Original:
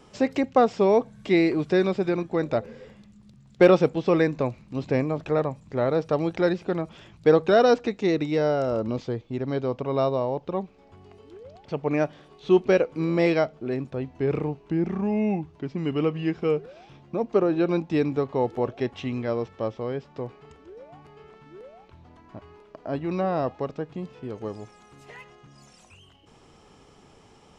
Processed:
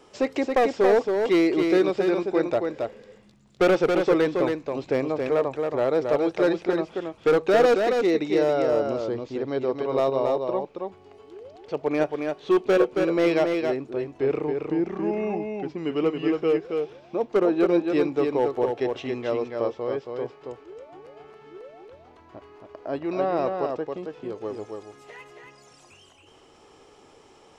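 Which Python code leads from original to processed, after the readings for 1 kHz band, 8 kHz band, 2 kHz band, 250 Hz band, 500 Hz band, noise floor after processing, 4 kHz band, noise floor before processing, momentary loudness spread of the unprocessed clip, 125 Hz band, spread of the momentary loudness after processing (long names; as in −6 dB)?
+0.5 dB, can't be measured, +1.0 dB, 0.0 dB, +1.5 dB, −54 dBFS, +1.0 dB, −54 dBFS, 14 LU, −7.5 dB, 13 LU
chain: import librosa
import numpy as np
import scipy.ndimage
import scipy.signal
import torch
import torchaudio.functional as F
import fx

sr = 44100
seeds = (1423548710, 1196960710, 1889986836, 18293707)

y = fx.low_shelf_res(x, sr, hz=260.0, db=-7.5, q=1.5)
y = np.clip(10.0 ** (15.0 / 20.0) * y, -1.0, 1.0) / 10.0 ** (15.0 / 20.0)
y = y + 10.0 ** (-4.5 / 20.0) * np.pad(y, (int(274 * sr / 1000.0), 0))[:len(y)]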